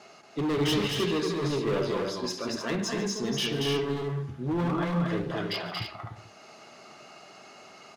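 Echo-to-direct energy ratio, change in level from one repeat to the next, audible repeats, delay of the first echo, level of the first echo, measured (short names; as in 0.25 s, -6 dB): -1.5 dB, no steady repeat, 3, 0.143 s, -16.5 dB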